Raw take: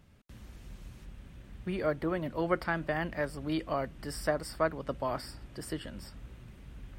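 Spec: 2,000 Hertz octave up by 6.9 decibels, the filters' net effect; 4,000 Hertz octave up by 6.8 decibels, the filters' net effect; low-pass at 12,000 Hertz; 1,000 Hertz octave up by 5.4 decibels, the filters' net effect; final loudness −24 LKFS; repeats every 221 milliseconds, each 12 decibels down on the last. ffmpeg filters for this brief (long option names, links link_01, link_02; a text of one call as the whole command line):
ffmpeg -i in.wav -af "lowpass=12000,equalizer=frequency=1000:width_type=o:gain=5,equalizer=frequency=2000:width_type=o:gain=5.5,equalizer=frequency=4000:width_type=o:gain=7.5,aecho=1:1:221|442|663:0.251|0.0628|0.0157,volume=6.5dB" out.wav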